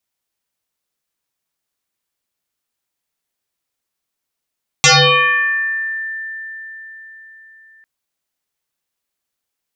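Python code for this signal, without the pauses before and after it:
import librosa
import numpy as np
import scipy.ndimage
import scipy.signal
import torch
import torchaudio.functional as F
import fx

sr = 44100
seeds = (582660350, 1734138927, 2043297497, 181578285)

y = fx.fm2(sr, length_s=3.0, level_db=-5.5, carrier_hz=1780.0, ratio=0.36, index=8.8, index_s=1.38, decay_s=4.54, shape='exponential')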